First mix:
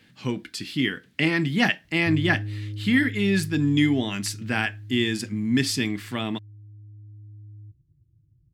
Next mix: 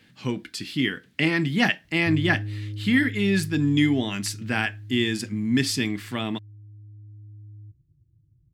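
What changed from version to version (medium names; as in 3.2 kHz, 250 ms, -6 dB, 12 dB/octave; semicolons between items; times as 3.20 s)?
no change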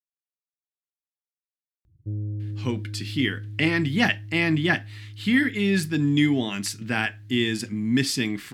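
speech: entry +2.40 s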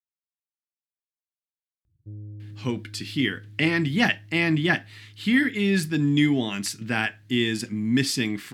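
background -9.0 dB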